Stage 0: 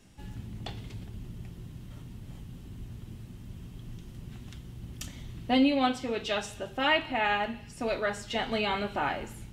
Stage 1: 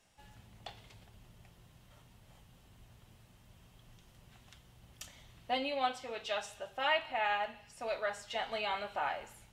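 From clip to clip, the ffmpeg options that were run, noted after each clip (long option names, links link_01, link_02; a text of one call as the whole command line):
ffmpeg -i in.wav -af "lowshelf=frequency=440:width_type=q:width=1.5:gain=-10.5,volume=-6.5dB" out.wav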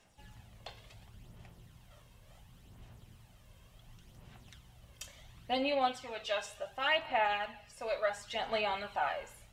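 ffmpeg -i in.wav -af "aphaser=in_gain=1:out_gain=1:delay=1.9:decay=0.44:speed=0.7:type=sinusoidal" out.wav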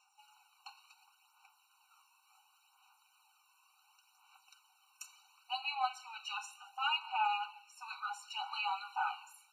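ffmpeg -i in.wav -af "afftfilt=real='re*eq(mod(floor(b*sr/1024/760),2),1)':imag='im*eq(mod(floor(b*sr/1024/760),2),1)':win_size=1024:overlap=0.75" out.wav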